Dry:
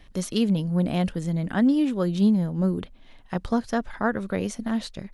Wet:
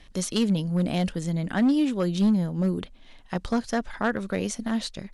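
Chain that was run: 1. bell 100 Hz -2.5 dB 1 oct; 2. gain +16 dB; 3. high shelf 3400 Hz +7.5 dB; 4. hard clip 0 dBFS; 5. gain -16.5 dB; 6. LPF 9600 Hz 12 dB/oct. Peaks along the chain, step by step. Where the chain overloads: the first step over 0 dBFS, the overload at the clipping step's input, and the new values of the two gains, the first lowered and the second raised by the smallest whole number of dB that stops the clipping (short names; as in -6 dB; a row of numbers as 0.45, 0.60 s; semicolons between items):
-11.0, +5.0, +8.0, 0.0, -16.5, -15.5 dBFS; step 2, 8.0 dB; step 2 +8 dB, step 5 -8.5 dB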